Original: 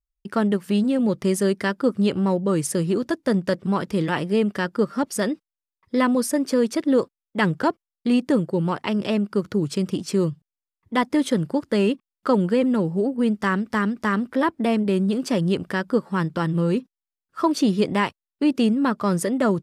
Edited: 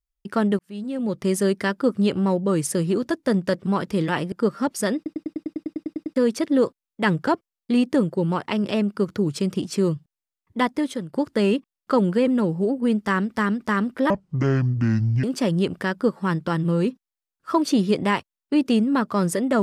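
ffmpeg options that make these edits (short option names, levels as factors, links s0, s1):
-filter_complex "[0:a]asplit=18[s0][s1][s2][s3][s4][s5][s6][s7][s8][s9][s10][s11][s12][s13][s14][s15][s16][s17];[s0]atrim=end=0.59,asetpts=PTS-STARTPTS,afade=t=out:st=0.586:d=0.004:c=hsin[s18];[s1]atrim=start=0.59:end=4.322,asetpts=PTS-STARTPTS,afade=t=in:d=0.77[s19];[s2]atrim=start=4.678:end=5.422[s20];[s3]atrim=start=5.318:end=5.422[s21];[s4]atrim=start=5.318:end=5.422[s22];[s5]atrim=start=5.318:end=5.422[s23];[s6]atrim=start=5.318:end=5.422[s24];[s7]atrim=start=5.318:end=5.422[s25];[s8]atrim=start=5.318:end=5.422[s26];[s9]atrim=start=5.318:end=5.422[s27];[s10]atrim=start=5.318:end=5.422[s28];[s11]atrim=start=5.318:end=5.422[s29];[s12]atrim=start=5.318:end=5.422[s30];[s13]atrim=start=5.318:end=5.422[s31];[s14]atrim=start=6.518:end=11.49,asetpts=PTS-STARTPTS,afade=t=out:st=4.442:d=0.53:silence=0.16788[s32];[s15]atrim=start=11.49:end=14.464,asetpts=PTS-STARTPTS,afade=t=in:d=0.004:c=hsin:silence=0.16788[s33];[s16]atrim=start=14.46:end=15.13,asetpts=PTS-STARTPTS,asetrate=26019,aresample=44100[s34];[s17]atrim=start=15.126[s35];[s18][s19]concat=n=2:v=0:a=1[s36];[s36][s20]acrossfade=d=0.004:c1=hsin:c2=hsin[s37];[s37][s21]acrossfade=d=0.004:c1=hsin:c2=hsin[s38];[s38][s22]acrossfade=d=0.004:c1=hsin:c2=hsin[s39];[s39][s23]acrossfade=d=0.004:c1=hsin:c2=hsin[s40];[s40][s24]acrossfade=d=0.004:c1=hsin:c2=hsin[s41];[s41][s25]acrossfade=d=0.004:c1=hsin:c2=hsin[s42];[s42][s26]acrossfade=d=0.004:c1=hsin:c2=hsin[s43];[s43][s27]acrossfade=d=0.004:c1=hsin:c2=hsin[s44];[s44][s28]acrossfade=d=0.004:c1=hsin:c2=hsin[s45];[s45][s29]acrossfade=d=0.004:c1=hsin:c2=hsin[s46];[s46][s30]acrossfade=d=0.004:c1=hsin:c2=hsin[s47];[s47][s31]acrossfade=d=0.004:c1=hsin:c2=hsin[s48];[s32][s33]concat=n=2:v=0:a=1[s49];[s48][s49]acrossfade=d=0.004:c1=hsin:c2=hsin[s50];[s50][s34]acrossfade=d=0.004:c1=hsin:c2=hsin[s51];[s51][s35]acrossfade=d=0.004:c1=hsin:c2=hsin"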